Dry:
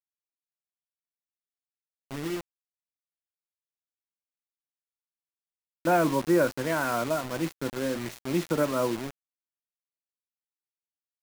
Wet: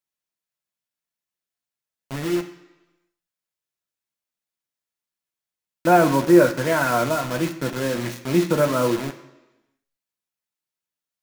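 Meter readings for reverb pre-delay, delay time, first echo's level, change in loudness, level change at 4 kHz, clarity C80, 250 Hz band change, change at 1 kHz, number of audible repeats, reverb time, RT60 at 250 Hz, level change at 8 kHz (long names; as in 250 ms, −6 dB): 3 ms, no echo audible, no echo audible, +7.5 dB, +6.5 dB, 14.0 dB, +8.0 dB, +7.5 dB, no echo audible, 1.1 s, 0.95 s, +6.5 dB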